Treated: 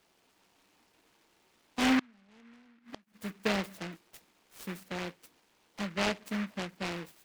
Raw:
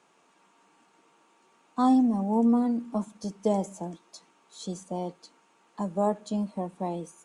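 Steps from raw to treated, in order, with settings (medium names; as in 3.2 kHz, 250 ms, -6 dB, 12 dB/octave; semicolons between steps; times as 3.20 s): 1.99–3.14 s: inverted gate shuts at -23 dBFS, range -30 dB; delay time shaken by noise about 1.6 kHz, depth 0.23 ms; trim -5 dB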